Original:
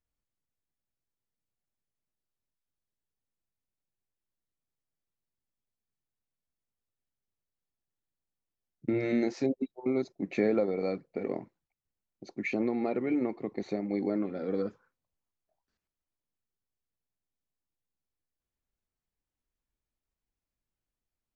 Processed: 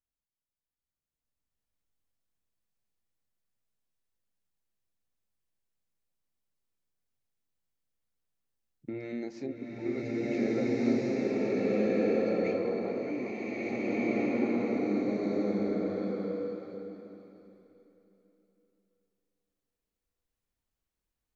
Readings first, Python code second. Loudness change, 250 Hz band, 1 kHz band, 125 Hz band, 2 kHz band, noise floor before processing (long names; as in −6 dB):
+0.5 dB, +2.5 dB, +2.0 dB, +2.5 dB, +2.5 dB, below −85 dBFS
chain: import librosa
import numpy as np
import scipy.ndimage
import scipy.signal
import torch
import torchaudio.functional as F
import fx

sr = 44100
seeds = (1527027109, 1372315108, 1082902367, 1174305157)

y = fx.rev_bloom(x, sr, seeds[0], attack_ms=1710, drr_db=-11.0)
y = y * 10.0 ** (-9.0 / 20.0)